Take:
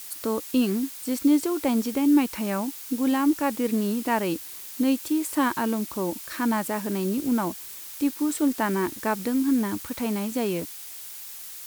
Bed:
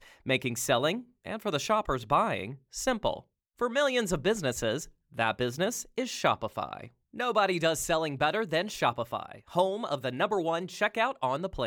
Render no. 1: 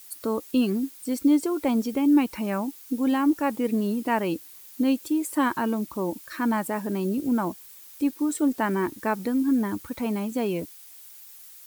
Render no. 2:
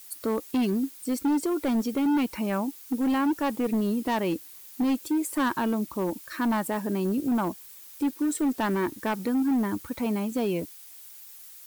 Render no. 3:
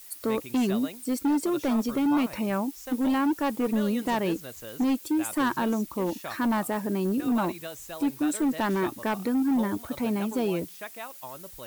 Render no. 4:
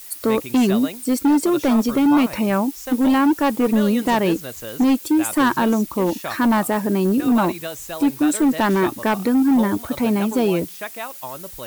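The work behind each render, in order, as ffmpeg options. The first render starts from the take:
-af "afftdn=nr=10:nf=-40"
-af "asoftclip=type=hard:threshold=-21dB"
-filter_complex "[1:a]volume=-12.5dB[a];[0:a][a]amix=inputs=2:normalize=0"
-af "volume=8.5dB"

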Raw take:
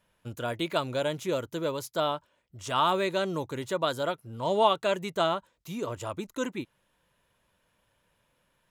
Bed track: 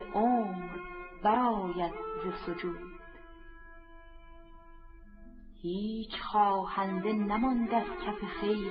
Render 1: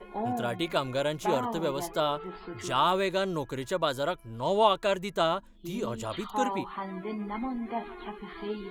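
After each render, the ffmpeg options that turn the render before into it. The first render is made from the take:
-filter_complex "[1:a]volume=-4.5dB[a];[0:a][a]amix=inputs=2:normalize=0"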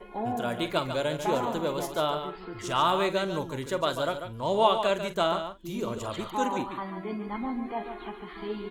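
-filter_complex "[0:a]asplit=2[a][b];[b]adelay=46,volume=-13dB[c];[a][c]amix=inputs=2:normalize=0,asplit=2[d][e];[e]aecho=0:1:143:0.376[f];[d][f]amix=inputs=2:normalize=0"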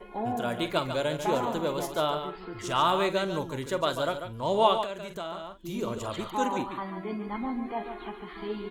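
-filter_complex "[0:a]asettb=1/sr,asplit=3[a][b][c];[a]atrim=end=4.844[d];[b]atrim=start=4.84:end=5.6,asetpts=PTS-STARTPTS,afade=t=in:d=0.004:c=qsin,afade=t=out:st=0.756:d=0.004:c=qsin,acompressor=threshold=-37dB:ratio=2.5:attack=3.2:release=140:knee=1:detection=peak[e];[c]atrim=start=5.596[f];[d][e]acrossfade=d=0.004:c1=hsin:c2=qsin[g];[g][f]acrossfade=d=0.004:c1=qsin:c2=hsin"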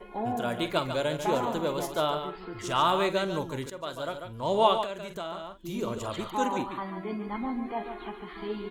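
-filter_complex "[0:a]asplit=2[a][b];[a]atrim=end=3.7,asetpts=PTS-STARTPTS,afade=t=out:st=3.696:d=0.004:c=hsin:silence=0.211349[c];[b]atrim=start=3.7,asetpts=PTS-STARTPTS,afade=t=in:d=0.83:silence=0.211349[d];[c][d]concat=n=2:v=0:a=1"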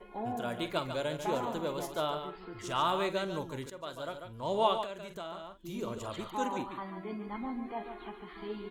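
-af "volume=-5.5dB"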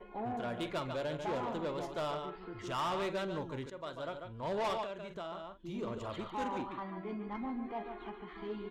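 -af "adynamicsmooth=sensitivity=6:basefreq=4k,asoftclip=type=tanh:threshold=-30.5dB"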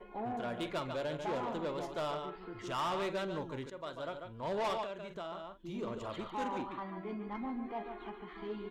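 -af "equalizer=f=74:w=1.7:g=-9"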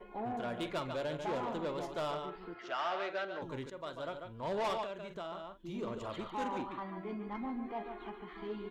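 -filter_complex "[0:a]asettb=1/sr,asplit=3[a][b][c];[a]atrim=end=2.544[d];[b]atrim=start=2.54:end=3.42,asetpts=PTS-STARTPTS,afade=t=in:d=0.004:c=qsin,afade=t=out:st=0.876:d=0.004:c=qsin,highpass=460,equalizer=f=470:t=q:w=4:g=-3,equalizer=f=700:t=q:w=4:g=7,equalizer=f=1k:t=q:w=4:g=-8,equalizer=f=1.5k:t=q:w=4:g=6,equalizer=f=3.6k:t=q:w=4:g=-4,lowpass=f=5k:w=0.5412,lowpass=f=5k:w=1.3066[e];[c]atrim=start=3.416[f];[d][e]acrossfade=d=0.004:c1=hsin:c2=qsin[g];[g][f]acrossfade=d=0.004:c1=qsin:c2=hsin"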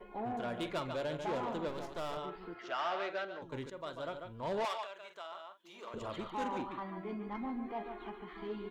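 -filter_complex "[0:a]asettb=1/sr,asplit=3[a][b][c];[a]atrim=end=1.684[d];[b]atrim=start=1.68:end=2.17,asetpts=PTS-STARTPTS,afade=t=in:d=0.004:c=qsin,afade=t=out:st=0.486:d=0.004:c=qsin,aeval=exprs='if(lt(val(0),0),0.251*val(0),val(0))':c=same[e];[c]atrim=start=2.166[f];[d][e]acrossfade=d=0.004:c1=hsin:c2=qsin[g];[g][f]acrossfade=d=0.004:c1=qsin:c2=hsin,asettb=1/sr,asplit=3[h][i][j];[h]atrim=end=4.654[k];[i]atrim=start=4.65:end=5.94,asetpts=PTS-STARTPTS,afade=t=in:d=0.004:c=qsin,afade=t=out:st=1.286:d=0.004:c=qsin,highpass=800[l];[j]atrim=start=5.936[m];[k][l]acrossfade=d=0.004:c1=hsin:c2=qsin[n];[n][m]acrossfade=d=0.004:c1=qsin:c2=hsin,asplit=2[o][p];[o]atrim=end=3.52,asetpts=PTS-STARTPTS,afade=t=out:st=3.02:d=0.5:c=qsin:silence=0.354813[q];[p]atrim=start=3.52,asetpts=PTS-STARTPTS,afade=t=in:d=0.004:c=hsin:silence=0.354813[r];[q][r]concat=n=2:v=0:a=1"

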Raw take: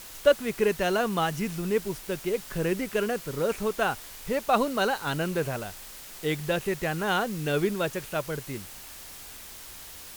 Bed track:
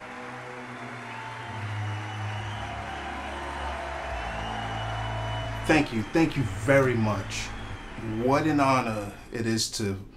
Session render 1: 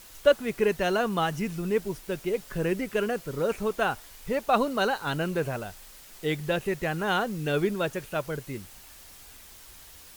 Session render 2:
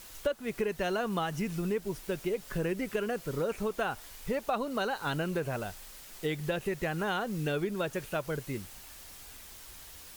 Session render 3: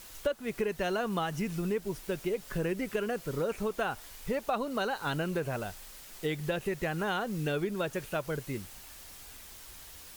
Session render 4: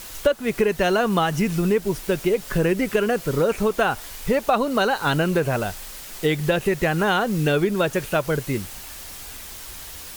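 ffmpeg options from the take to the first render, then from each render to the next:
-af "afftdn=nr=6:nf=-44"
-af "acompressor=threshold=-28dB:ratio=6"
-af anull
-af "volume=11.5dB"

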